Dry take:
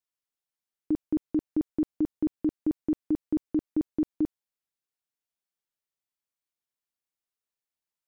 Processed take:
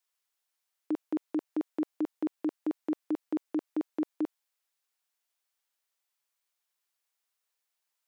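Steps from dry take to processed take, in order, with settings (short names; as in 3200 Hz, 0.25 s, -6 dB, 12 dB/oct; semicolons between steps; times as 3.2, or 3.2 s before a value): HPF 620 Hz 12 dB/oct; gain +8 dB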